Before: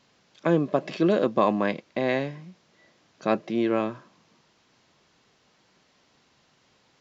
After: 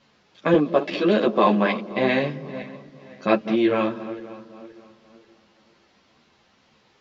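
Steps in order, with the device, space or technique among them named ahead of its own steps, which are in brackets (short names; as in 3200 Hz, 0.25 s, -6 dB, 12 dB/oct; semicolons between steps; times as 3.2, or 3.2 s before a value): regenerating reverse delay 0.262 s, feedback 56%, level -14 dB; 0.54–1.91 HPF 180 Hz 24 dB/oct; string-machine ensemble chorus (ensemble effect; LPF 5000 Hz 12 dB/oct); dynamic EQ 3200 Hz, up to +5 dB, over -49 dBFS, Q 0.87; dark delay 0.196 s, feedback 54%, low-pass 450 Hz, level -14 dB; gain +6.5 dB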